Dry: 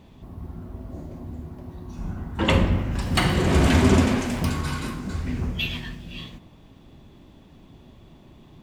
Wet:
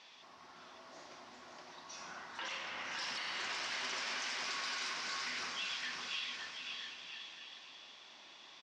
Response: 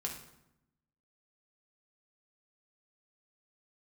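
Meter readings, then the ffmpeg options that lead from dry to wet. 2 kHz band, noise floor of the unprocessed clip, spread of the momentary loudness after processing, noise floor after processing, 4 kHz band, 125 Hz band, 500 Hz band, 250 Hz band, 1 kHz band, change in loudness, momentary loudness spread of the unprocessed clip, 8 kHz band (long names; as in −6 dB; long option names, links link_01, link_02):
−8.5 dB, −50 dBFS, 17 LU, −58 dBFS, −7.0 dB, below −40 dB, −24.5 dB, −34.5 dB, −13.0 dB, −16.5 dB, 20 LU, −8.5 dB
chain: -af "highpass=1500,acompressor=threshold=-43dB:ratio=4,lowpass=frequency=5500:width_type=q:width=3.6,aemphasis=mode=reproduction:type=50kf,alimiter=level_in=14dB:limit=-24dB:level=0:latency=1:release=33,volume=-14dB,aecho=1:1:560|980|1295|1531|1708:0.631|0.398|0.251|0.158|0.1,volume=5.5dB"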